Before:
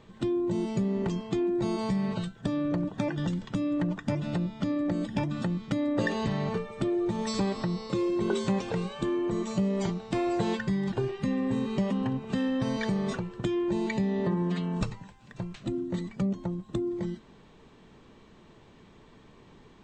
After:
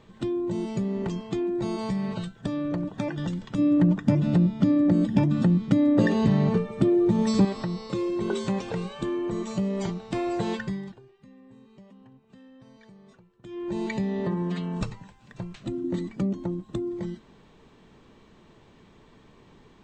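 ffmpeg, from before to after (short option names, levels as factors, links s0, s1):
-filter_complex "[0:a]asettb=1/sr,asplit=3[s0][s1][s2];[s0]atrim=end=3.584[s3];[s1]atrim=start=3.58:end=7.45,asetpts=PTS-STARTPTS,afade=t=in:d=0.004:c=qsin,afade=t=out:st=3.866:d=0.004:c=qsin,equalizer=f=200:w=0.52:g=10[s4];[s2]atrim=start=7.446[s5];[s3][s4]acrossfade=d=0.004:c1=hsin:c2=qsin[s6];[s6][s5]acrossfade=d=0.004:c1=qsin:c2=hsin,asettb=1/sr,asplit=3[s7][s8][s9];[s7]atrim=end=15.844[s10];[s8]atrim=start=15.84:end=16.65,asetpts=PTS-STARTPTS,afade=t=in:d=0.004:c=qsin,afade=t=out:st=0.806:d=0.004:c=qsin,equalizer=f=300:w=3.4:g=12.5[s11];[s9]atrim=start=16.646[s12];[s10][s11]acrossfade=d=0.004:c1=hsin:c2=qsin[s13];[s13][s12]acrossfade=d=0.004:c1=qsin:c2=hsin,asplit=3[s14][s15][s16];[s14]atrim=end=10.99,asetpts=PTS-STARTPTS,afade=t=out:st=10.6:d=0.39:silence=0.0707946[s17];[s15]atrim=start=10.99:end=13.42,asetpts=PTS-STARTPTS,volume=0.0708[s18];[s16]atrim=start=13.42,asetpts=PTS-STARTPTS,afade=t=in:d=0.39:silence=0.0707946[s19];[s17][s18][s19]concat=n=3:v=0:a=1"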